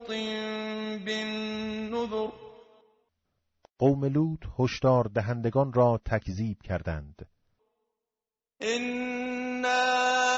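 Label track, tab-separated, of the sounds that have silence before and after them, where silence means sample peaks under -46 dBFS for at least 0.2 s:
3.650000	7.250000	sound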